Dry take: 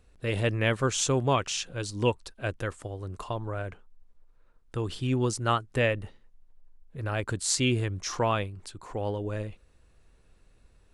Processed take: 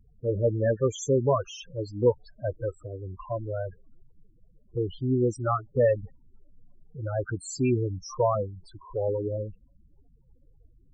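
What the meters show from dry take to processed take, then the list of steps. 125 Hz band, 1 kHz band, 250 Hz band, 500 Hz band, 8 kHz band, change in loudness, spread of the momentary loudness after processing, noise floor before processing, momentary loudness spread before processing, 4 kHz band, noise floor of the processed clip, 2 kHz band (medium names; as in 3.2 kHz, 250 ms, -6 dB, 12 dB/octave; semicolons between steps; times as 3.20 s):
0.0 dB, -2.0 dB, +1.0 dB, +5.0 dB, -9.5 dB, +1.0 dB, 14 LU, -61 dBFS, 13 LU, -12.5 dB, -60 dBFS, -10.5 dB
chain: added noise pink -59 dBFS; loudest bins only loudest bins 8; dynamic bell 540 Hz, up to +7 dB, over -43 dBFS, Q 0.92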